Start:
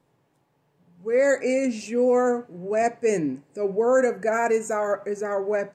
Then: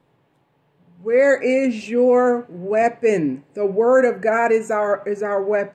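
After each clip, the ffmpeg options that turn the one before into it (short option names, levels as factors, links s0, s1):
-af "highshelf=f=4400:t=q:w=1.5:g=-7,volume=1.78"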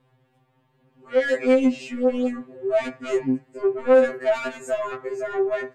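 -af "asoftclip=type=tanh:threshold=0.178,afftfilt=real='re*2.45*eq(mod(b,6),0)':imag='im*2.45*eq(mod(b,6),0)':win_size=2048:overlap=0.75"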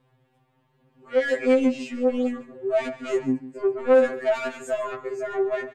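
-af "aecho=1:1:145:0.168,volume=0.841"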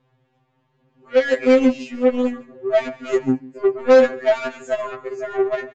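-af "aeval=exprs='0.299*(cos(1*acos(clip(val(0)/0.299,-1,1)))-cos(1*PI/2))+0.0188*(cos(7*acos(clip(val(0)/0.299,-1,1)))-cos(7*PI/2))':c=same,aresample=16000,aresample=44100,volume=1.88"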